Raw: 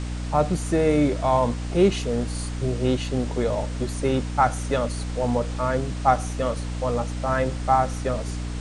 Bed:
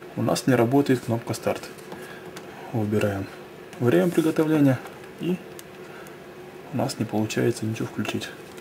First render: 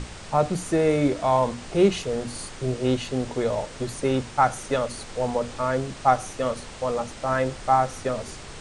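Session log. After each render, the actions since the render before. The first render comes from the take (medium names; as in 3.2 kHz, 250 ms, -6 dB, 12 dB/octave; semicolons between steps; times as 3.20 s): hum notches 60/120/180/240/300 Hz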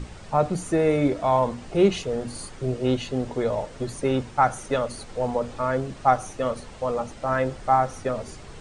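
noise reduction 8 dB, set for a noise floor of -41 dBFS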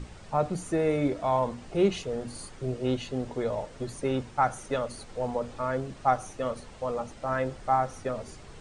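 trim -5 dB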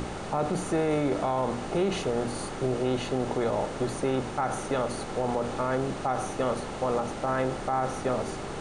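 spectral levelling over time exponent 0.6; peak limiter -18 dBFS, peak gain reduction 9 dB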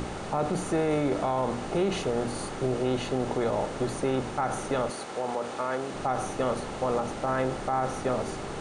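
4.90–5.94 s: high-pass 450 Hz 6 dB/octave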